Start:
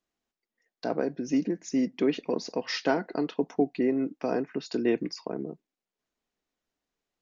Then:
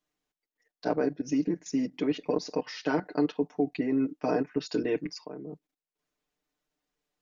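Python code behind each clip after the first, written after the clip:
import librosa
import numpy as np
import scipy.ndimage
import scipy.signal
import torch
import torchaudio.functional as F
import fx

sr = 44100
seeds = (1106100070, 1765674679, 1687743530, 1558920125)

y = fx.level_steps(x, sr, step_db=15)
y = y + 0.86 * np.pad(y, (int(6.7 * sr / 1000.0), 0))[:len(y)]
y = F.gain(torch.from_numpy(y), 2.0).numpy()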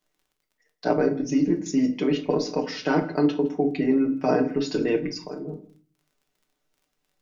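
y = fx.dmg_crackle(x, sr, seeds[0], per_s=22.0, level_db=-57.0)
y = y + 10.0 ** (-22.0 / 20.0) * np.pad(y, (int(163 * sr / 1000.0), 0))[:len(y)]
y = fx.room_shoebox(y, sr, seeds[1], volume_m3=250.0, walls='furnished', distance_m=1.1)
y = F.gain(torch.from_numpy(y), 4.5).numpy()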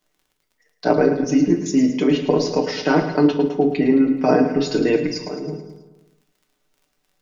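y = fx.echo_feedback(x, sr, ms=108, feedback_pct=56, wet_db=-10.5)
y = F.gain(torch.from_numpy(y), 5.5).numpy()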